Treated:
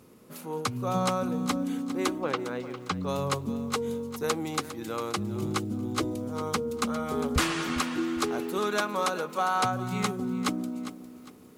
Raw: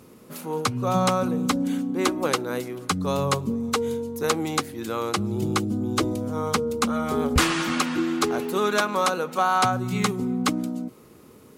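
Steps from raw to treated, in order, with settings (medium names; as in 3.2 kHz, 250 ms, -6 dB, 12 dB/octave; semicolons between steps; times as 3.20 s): 2.18–3.07 s: low-pass 2.9 kHz -> 5.1 kHz 12 dB/octave; bit-crushed delay 404 ms, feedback 35%, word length 8-bit, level -13 dB; trim -5.5 dB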